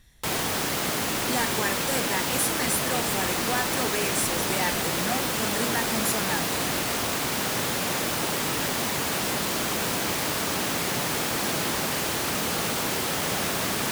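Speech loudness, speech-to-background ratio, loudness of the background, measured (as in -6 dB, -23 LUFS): -30.0 LUFS, -4.5 dB, -25.5 LUFS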